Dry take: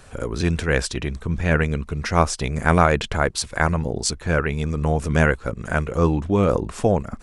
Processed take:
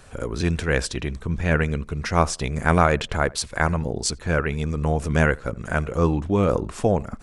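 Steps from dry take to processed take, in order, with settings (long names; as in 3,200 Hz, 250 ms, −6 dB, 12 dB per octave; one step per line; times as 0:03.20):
tape delay 81 ms, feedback 24%, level −22 dB, low-pass 1,400 Hz
level −1.5 dB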